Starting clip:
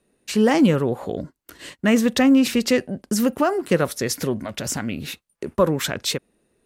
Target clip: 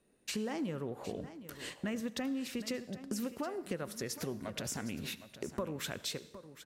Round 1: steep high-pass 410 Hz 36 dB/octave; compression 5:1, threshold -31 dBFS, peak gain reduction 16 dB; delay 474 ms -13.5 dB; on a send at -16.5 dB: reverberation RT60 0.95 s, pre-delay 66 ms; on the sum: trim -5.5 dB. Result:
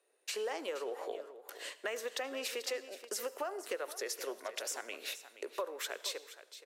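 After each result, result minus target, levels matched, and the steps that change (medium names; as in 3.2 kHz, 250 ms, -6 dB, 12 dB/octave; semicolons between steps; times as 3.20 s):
echo 288 ms early; 500 Hz band +2.5 dB
change: delay 762 ms -13.5 dB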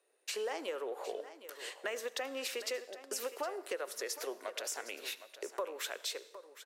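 500 Hz band +2.5 dB
remove: steep high-pass 410 Hz 36 dB/octave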